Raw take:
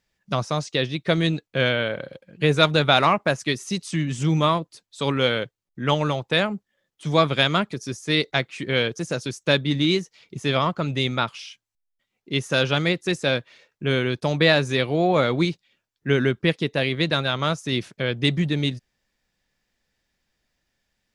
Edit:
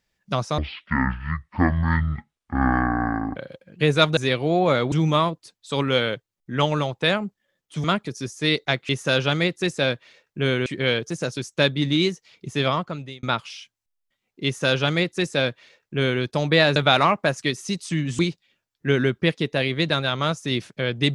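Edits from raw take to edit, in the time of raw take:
0.58–1.97 speed 50%
2.78–4.21 swap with 14.65–15.4
7.13–7.5 cut
10.55–11.12 fade out
12.34–14.11 copy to 8.55

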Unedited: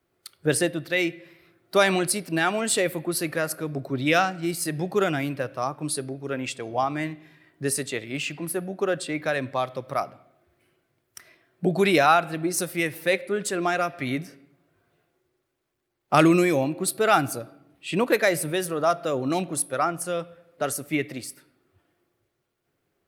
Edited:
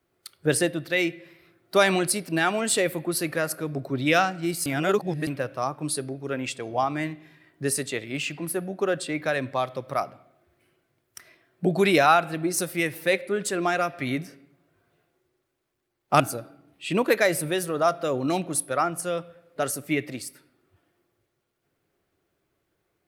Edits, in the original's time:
4.66–5.27 reverse
16.2–17.22 cut

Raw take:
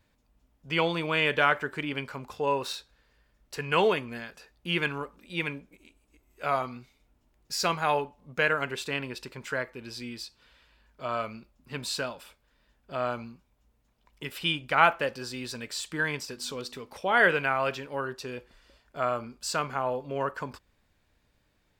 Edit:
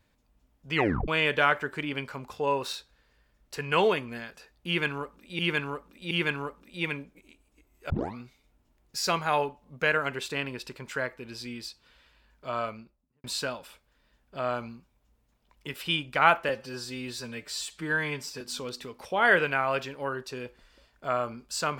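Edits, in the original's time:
0.75 tape stop 0.33 s
4.67–5.39 loop, 3 plays
6.46 tape start 0.25 s
11.11–11.8 studio fade out
15.05–16.33 stretch 1.5×

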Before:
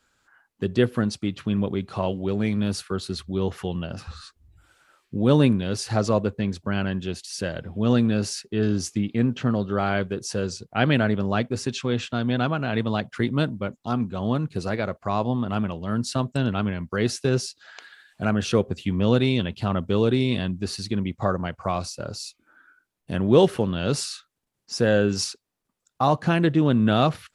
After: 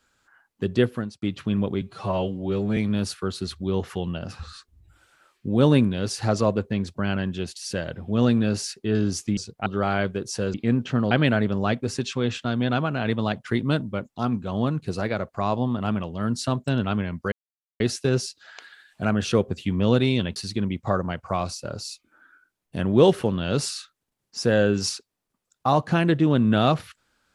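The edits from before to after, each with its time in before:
0.81–1.22 fade out
1.81–2.45 stretch 1.5×
9.05–9.62 swap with 10.5–10.79
17 insert silence 0.48 s
19.56–20.71 cut

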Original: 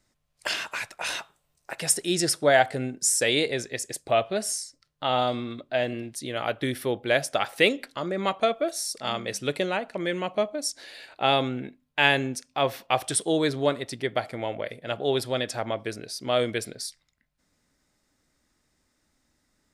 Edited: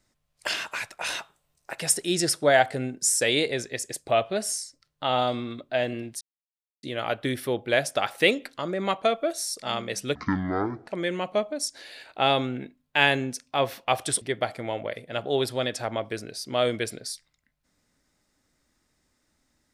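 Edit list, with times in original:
6.21 insert silence 0.62 s
9.53–9.9 speed 51%
13.24–13.96 cut

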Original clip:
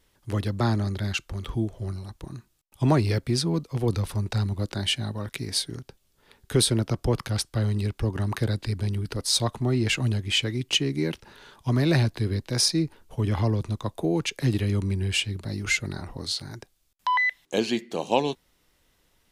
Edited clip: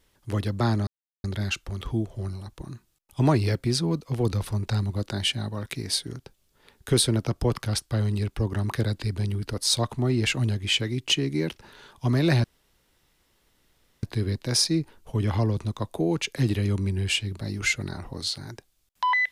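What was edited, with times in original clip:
0.87 insert silence 0.37 s
12.07 insert room tone 1.59 s

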